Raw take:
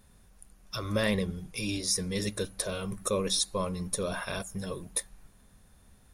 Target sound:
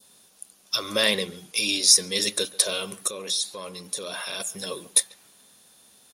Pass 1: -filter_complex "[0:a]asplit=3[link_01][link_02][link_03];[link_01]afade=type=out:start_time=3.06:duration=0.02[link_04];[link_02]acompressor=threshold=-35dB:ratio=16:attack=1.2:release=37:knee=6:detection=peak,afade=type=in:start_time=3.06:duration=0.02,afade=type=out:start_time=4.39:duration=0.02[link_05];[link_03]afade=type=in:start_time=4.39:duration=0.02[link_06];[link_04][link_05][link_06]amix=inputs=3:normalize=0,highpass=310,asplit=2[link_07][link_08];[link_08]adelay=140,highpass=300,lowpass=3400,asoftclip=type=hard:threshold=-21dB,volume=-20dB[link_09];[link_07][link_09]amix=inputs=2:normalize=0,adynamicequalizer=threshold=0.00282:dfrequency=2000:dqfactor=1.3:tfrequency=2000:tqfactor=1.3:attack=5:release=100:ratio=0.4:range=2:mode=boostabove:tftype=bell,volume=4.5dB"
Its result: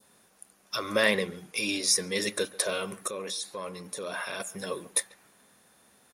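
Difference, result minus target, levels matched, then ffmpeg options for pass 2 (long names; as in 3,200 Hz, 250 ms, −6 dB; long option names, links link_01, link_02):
2,000 Hz band +6.0 dB
-filter_complex "[0:a]asplit=3[link_01][link_02][link_03];[link_01]afade=type=out:start_time=3.06:duration=0.02[link_04];[link_02]acompressor=threshold=-35dB:ratio=16:attack=1.2:release=37:knee=6:detection=peak,afade=type=in:start_time=3.06:duration=0.02,afade=type=out:start_time=4.39:duration=0.02[link_05];[link_03]afade=type=in:start_time=4.39:duration=0.02[link_06];[link_04][link_05][link_06]amix=inputs=3:normalize=0,highpass=310,highshelf=frequency=2600:width_type=q:width=1.5:gain=7.5,asplit=2[link_07][link_08];[link_08]adelay=140,highpass=300,lowpass=3400,asoftclip=type=hard:threshold=-21dB,volume=-20dB[link_09];[link_07][link_09]amix=inputs=2:normalize=0,adynamicequalizer=threshold=0.00282:dfrequency=2000:dqfactor=1.3:tfrequency=2000:tqfactor=1.3:attack=5:release=100:ratio=0.4:range=2:mode=boostabove:tftype=bell,volume=4.5dB"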